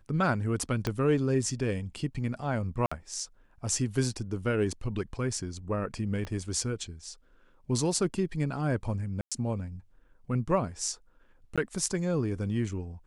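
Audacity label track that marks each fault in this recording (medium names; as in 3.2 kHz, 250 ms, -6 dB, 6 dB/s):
0.870000	0.870000	pop -15 dBFS
2.860000	2.920000	dropout 55 ms
6.250000	6.250000	pop -25 dBFS
9.210000	9.320000	dropout 106 ms
11.560000	11.580000	dropout 16 ms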